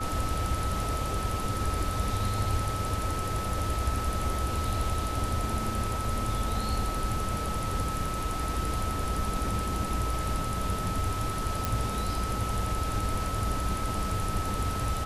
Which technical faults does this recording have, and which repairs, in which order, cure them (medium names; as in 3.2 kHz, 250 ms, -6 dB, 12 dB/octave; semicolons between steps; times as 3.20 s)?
whine 1.3 kHz -34 dBFS
11.65 s: pop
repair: de-click; band-stop 1.3 kHz, Q 30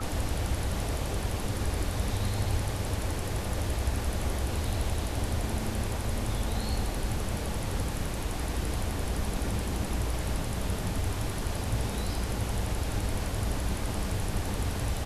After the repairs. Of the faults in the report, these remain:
nothing left